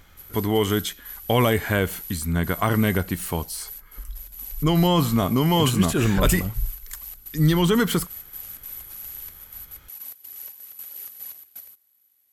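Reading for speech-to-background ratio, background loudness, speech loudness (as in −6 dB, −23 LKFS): 14.5 dB, −37.0 LKFS, −22.5 LKFS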